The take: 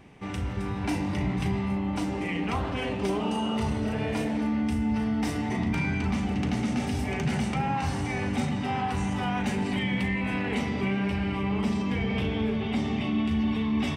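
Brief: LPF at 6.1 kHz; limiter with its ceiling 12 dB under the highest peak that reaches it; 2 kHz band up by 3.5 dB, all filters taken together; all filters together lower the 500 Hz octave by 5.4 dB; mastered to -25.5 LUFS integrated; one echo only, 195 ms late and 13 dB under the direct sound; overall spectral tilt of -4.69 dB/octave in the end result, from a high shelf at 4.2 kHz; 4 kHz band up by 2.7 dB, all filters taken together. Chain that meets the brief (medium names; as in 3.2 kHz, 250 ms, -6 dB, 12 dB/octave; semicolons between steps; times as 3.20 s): low-pass 6.1 kHz; peaking EQ 500 Hz -7.5 dB; peaking EQ 2 kHz +4.5 dB; peaking EQ 4 kHz +6 dB; treble shelf 4.2 kHz -7 dB; peak limiter -28 dBFS; delay 195 ms -13 dB; trim +10 dB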